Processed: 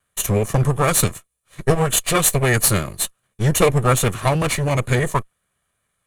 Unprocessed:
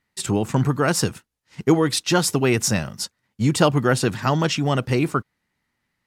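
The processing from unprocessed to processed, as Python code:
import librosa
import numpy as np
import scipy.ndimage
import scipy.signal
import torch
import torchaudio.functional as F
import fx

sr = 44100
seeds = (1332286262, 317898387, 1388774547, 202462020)

y = fx.lower_of_two(x, sr, delay_ms=1.7)
y = fx.peak_eq(y, sr, hz=13000.0, db=14.0, octaves=0.95)
y = fx.formant_shift(y, sr, semitones=-4)
y = fx.peak_eq(y, sr, hz=5100.0, db=-12.0, octaves=0.43)
y = y * 10.0 ** (3.0 / 20.0)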